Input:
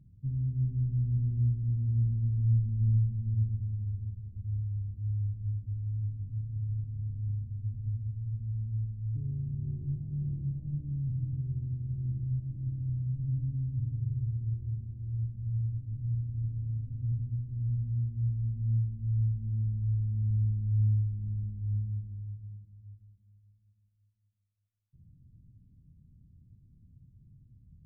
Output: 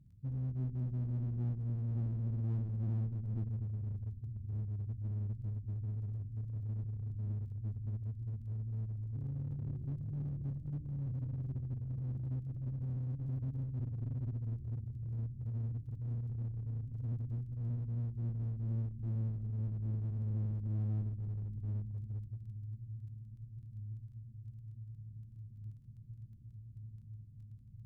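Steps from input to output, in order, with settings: echo that smears into a reverb 1886 ms, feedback 74%, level -14.5 dB; crackle 14 per s -58 dBFS; one-sided clip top -32.5 dBFS, bottom -22.5 dBFS; transformer saturation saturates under 110 Hz; trim -4 dB

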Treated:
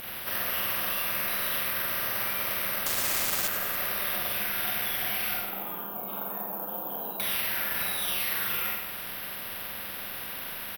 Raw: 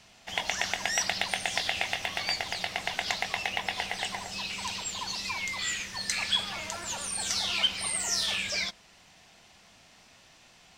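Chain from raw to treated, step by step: frequency axis rescaled in octaves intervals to 77%; 5.34–7.20 s: elliptic band-pass 180–870 Hz, stop band 40 dB; peak limiter -27 dBFS, peak gain reduction 10.5 dB; compression 2:1, threshold -44 dBFS, peak gain reduction 7 dB; Schroeder reverb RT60 0.5 s, combs from 32 ms, DRR -2.5 dB; 2.86–3.48 s: word length cut 6-bit, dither none; on a send: feedback delay 97 ms, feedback 51%, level -16 dB; on the sum: careless resampling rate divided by 3×, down none, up zero stuff; spectrum-flattening compressor 2:1; trim +3 dB

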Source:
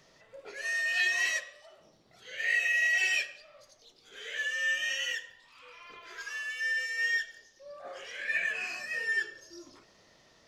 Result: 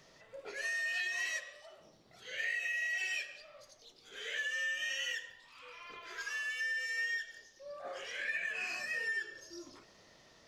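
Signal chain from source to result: compression 6:1, threshold -34 dBFS, peak gain reduction 10 dB

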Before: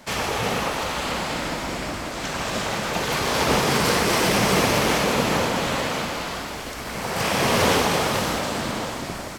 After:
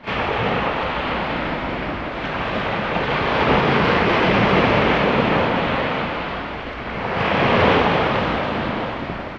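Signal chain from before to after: low-pass 3.1 kHz 24 dB/octave; pre-echo 35 ms -13 dB; trim +4 dB

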